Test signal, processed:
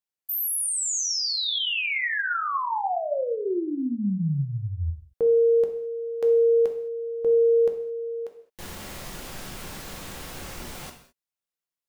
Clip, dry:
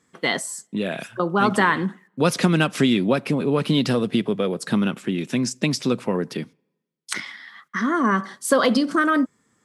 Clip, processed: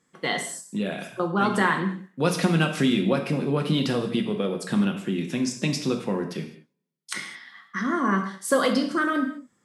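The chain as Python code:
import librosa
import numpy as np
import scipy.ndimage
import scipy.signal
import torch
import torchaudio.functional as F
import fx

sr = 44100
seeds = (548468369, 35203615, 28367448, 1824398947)

y = fx.rev_gated(x, sr, seeds[0], gate_ms=240, shape='falling', drr_db=3.5)
y = y * librosa.db_to_amplitude(-5.0)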